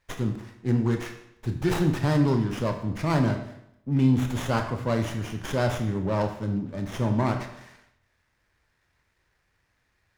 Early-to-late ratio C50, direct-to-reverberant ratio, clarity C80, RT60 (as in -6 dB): 8.5 dB, 4.5 dB, 11.0 dB, 0.80 s